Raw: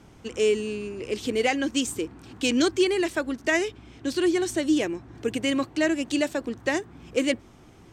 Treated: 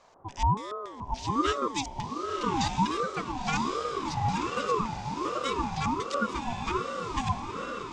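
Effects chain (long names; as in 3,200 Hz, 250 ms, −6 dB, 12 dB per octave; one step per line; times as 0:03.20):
auto-filter low-pass square 3.5 Hz 540–5,600 Hz
feedback delay with all-pass diffusion 1,038 ms, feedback 53%, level −4 dB
ring modulator whose carrier an LFO sweeps 660 Hz, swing 30%, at 1.3 Hz
level −5.5 dB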